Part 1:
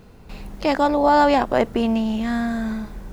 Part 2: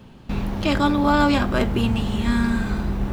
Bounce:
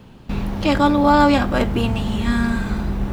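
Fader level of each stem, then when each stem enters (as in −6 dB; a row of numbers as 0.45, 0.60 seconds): −6.5, +1.0 decibels; 0.00, 0.00 seconds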